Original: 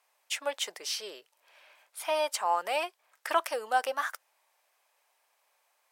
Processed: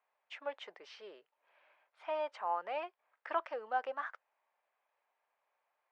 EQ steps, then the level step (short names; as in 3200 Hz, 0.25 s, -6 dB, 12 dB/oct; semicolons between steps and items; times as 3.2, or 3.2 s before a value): LPF 2100 Hz 12 dB/oct; air absorption 70 m; -7.0 dB